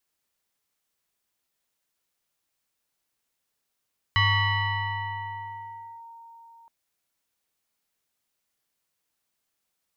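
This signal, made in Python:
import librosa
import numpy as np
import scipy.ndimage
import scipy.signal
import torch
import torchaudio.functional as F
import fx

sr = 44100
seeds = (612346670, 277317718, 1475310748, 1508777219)

y = fx.fm2(sr, length_s=2.52, level_db=-17, carrier_hz=923.0, ratio=1.11, index=2.1, index_s=1.86, decay_s=4.54, shape='linear')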